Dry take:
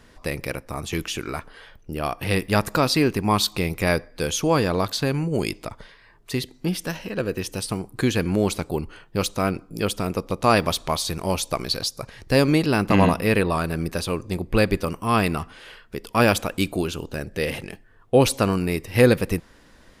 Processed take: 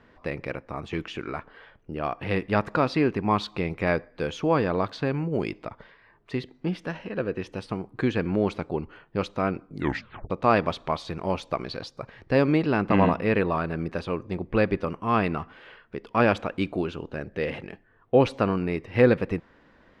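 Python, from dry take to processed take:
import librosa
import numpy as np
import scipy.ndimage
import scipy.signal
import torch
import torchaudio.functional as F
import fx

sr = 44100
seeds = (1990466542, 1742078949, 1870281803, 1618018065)

y = fx.edit(x, sr, fx.tape_stop(start_s=9.7, length_s=0.6), tone=tone)
y = scipy.signal.sosfilt(scipy.signal.butter(2, 2300.0, 'lowpass', fs=sr, output='sos'), y)
y = fx.low_shelf(y, sr, hz=69.0, db=-12.0)
y = F.gain(torch.from_numpy(y), -2.0).numpy()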